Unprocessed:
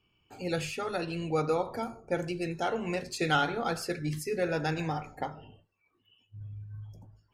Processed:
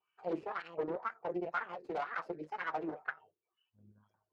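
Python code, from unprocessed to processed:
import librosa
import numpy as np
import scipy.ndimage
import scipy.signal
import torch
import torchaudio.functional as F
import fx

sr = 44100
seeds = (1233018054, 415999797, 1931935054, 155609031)

y = scipy.signal.sosfilt(scipy.signal.butter(2, 7200.0, 'lowpass', fs=sr, output='sos'), x)
y = fx.peak_eq(y, sr, hz=270.0, db=-11.5, octaves=0.23)
y = fx.stretch_vocoder(y, sr, factor=0.59)
y = fx.rider(y, sr, range_db=4, speed_s=0.5)
y = fx.low_shelf(y, sr, hz=170.0, db=-5.0)
y = fx.notch_comb(y, sr, f0_hz=280.0)
y = fx.cheby_harmonics(y, sr, harmonics=(3, 5, 6), levels_db=(-11, -16, -7), full_scale_db=-18.5)
y = fx.wah_lfo(y, sr, hz=2.0, low_hz=340.0, high_hz=1600.0, q=4.0)
y = F.gain(torch.from_numpy(y), 2.0).numpy()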